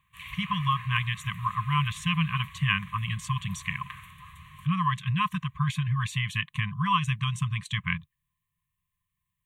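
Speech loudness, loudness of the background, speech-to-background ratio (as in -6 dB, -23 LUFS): -29.0 LUFS, -45.0 LUFS, 16.0 dB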